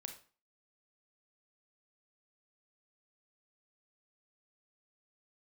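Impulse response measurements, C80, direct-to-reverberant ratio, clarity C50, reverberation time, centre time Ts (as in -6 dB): 14.0 dB, 5.0 dB, 9.0 dB, 0.40 s, 15 ms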